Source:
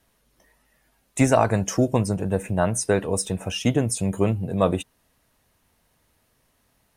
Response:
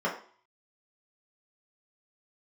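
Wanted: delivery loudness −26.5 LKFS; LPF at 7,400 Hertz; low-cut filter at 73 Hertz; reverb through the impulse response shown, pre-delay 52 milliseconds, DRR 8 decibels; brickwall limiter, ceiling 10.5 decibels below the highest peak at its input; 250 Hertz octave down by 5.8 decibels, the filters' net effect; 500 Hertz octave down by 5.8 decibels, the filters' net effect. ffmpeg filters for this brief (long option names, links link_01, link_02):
-filter_complex "[0:a]highpass=73,lowpass=7400,equalizer=frequency=250:width_type=o:gain=-6,equalizer=frequency=500:width_type=o:gain=-6,alimiter=limit=-17.5dB:level=0:latency=1,asplit=2[link_01][link_02];[1:a]atrim=start_sample=2205,adelay=52[link_03];[link_02][link_03]afir=irnorm=-1:irlink=0,volume=-18.5dB[link_04];[link_01][link_04]amix=inputs=2:normalize=0,volume=3dB"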